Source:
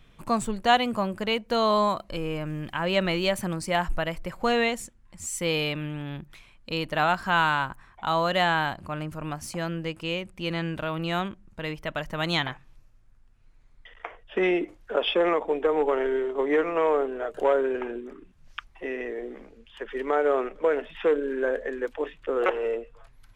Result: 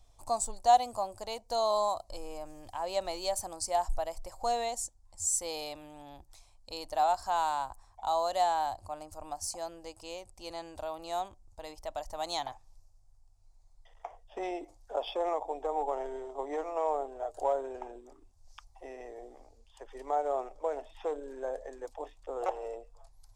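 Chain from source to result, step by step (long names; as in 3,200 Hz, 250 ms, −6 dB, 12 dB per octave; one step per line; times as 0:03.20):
drawn EQ curve 100 Hz 0 dB, 160 Hz −28 dB, 280 Hz −12 dB, 440 Hz −11 dB, 770 Hz +5 dB, 1,500 Hz −17 dB, 3,000 Hz −14 dB, 4,800 Hz +5 dB, 8,000 Hz +8 dB, 14,000 Hz −1 dB
level −3.5 dB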